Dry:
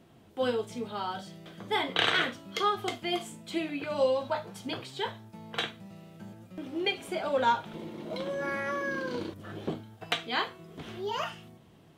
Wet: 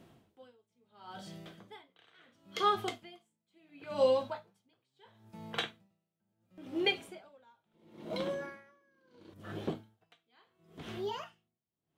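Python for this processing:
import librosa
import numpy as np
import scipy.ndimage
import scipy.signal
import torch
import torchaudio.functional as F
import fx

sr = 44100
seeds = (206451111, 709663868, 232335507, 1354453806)

y = x * 10.0 ** (-39 * (0.5 - 0.5 * np.cos(2.0 * np.pi * 0.73 * np.arange(len(x)) / sr)) / 20.0)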